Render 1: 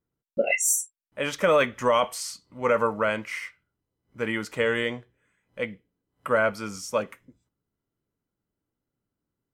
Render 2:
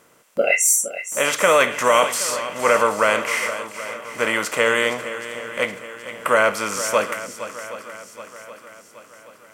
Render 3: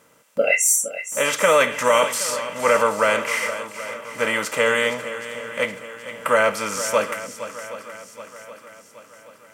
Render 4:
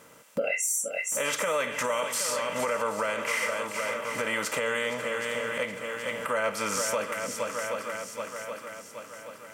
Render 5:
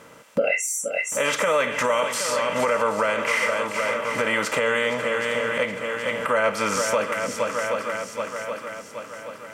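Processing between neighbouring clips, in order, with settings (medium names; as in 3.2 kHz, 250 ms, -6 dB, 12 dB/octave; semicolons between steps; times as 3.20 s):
spectral levelling over time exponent 0.6; bass shelf 290 Hz -11.5 dB; on a send: shuffle delay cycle 774 ms, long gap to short 1.5:1, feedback 47%, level -12.5 dB; on the sum: trim +5 dB
comb of notches 360 Hz
compression 3:1, threshold -30 dBFS, peak gain reduction 13.5 dB; peak limiter -21 dBFS, peak gain reduction 7.5 dB; trim +3 dB
treble shelf 7 kHz -11 dB; trim +7 dB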